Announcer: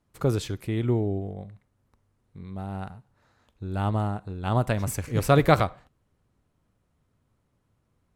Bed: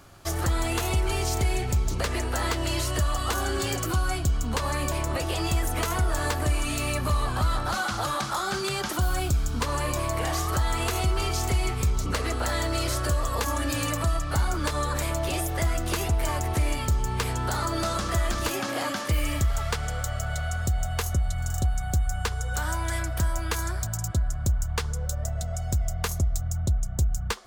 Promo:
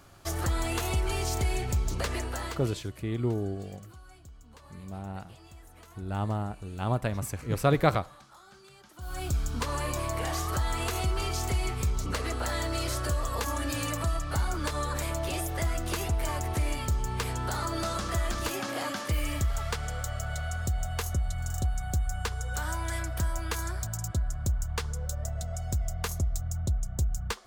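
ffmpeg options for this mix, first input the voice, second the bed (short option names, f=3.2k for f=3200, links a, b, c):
-filter_complex "[0:a]adelay=2350,volume=-4.5dB[a];[1:a]volume=18dB,afade=t=out:st=2.11:d=0.7:silence=0.0794328,afade=t=in:st=8.96:d=0.4:silence=0.0841395[b];[a][b]amix=inputs=2:normalize=0"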